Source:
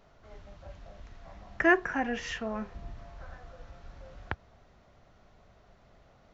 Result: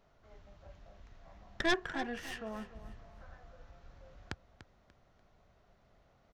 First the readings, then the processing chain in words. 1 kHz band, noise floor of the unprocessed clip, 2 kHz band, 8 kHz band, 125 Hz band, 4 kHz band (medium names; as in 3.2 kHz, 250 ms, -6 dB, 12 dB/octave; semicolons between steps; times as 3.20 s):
-7.5 dB, -61 dBFS, -8.5 dB, no reading, -6.0 dB, +2.5 dB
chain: tracing distortion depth 0.2 ms; feedback delay 293 ms, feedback 29%, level -14 dB; trim -7.5 dB